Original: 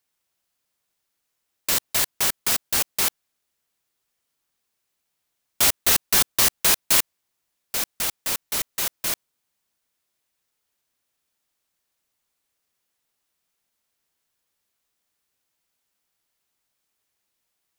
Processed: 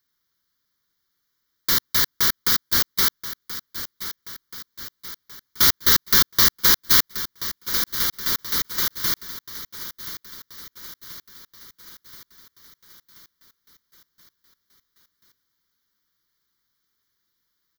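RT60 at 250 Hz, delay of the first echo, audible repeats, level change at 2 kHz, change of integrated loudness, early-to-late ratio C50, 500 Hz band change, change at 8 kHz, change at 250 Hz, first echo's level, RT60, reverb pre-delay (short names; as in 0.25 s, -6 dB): none, 1.03 s, 5, +2.5 dB, +1.5 dB, none, -2.0 dB, -2.5 dB, +3.5 dB, -13.0 dB, none, none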